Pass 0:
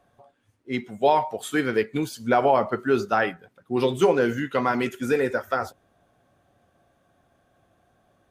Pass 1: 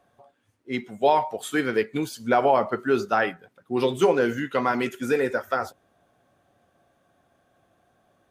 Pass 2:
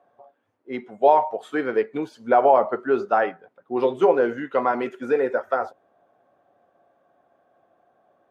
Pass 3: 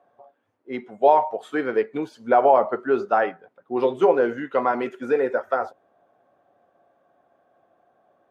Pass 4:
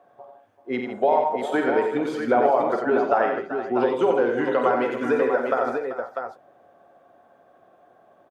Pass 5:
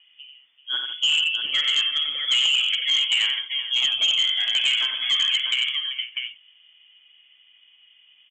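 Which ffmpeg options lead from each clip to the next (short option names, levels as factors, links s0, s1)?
-af "lowshelf=f=100:g=-8"
-af "bandpass=f=660:t=q:w=0.95:csg=0,volume=1.68"
-af anull
-af "acompressor=threshold=0.0447:ratio=2.5,aecho=1:1:49|90|160|387|464|646:0.335|0.531|0.299|0.224|0.168|0.473,volume=1.78"
-af "lowpass=f=3100:t=q:w=0.5098,lowpass=f=3100:t=q:w=0.6013,lowpass=f=3100:t=q:w=0.9,lowpass=f=3100:t=q:w=2.563,afreqshift=-3600,aresample=16000,volume=6.31,asoftclip=hard,volume=0.158,aresample=44100"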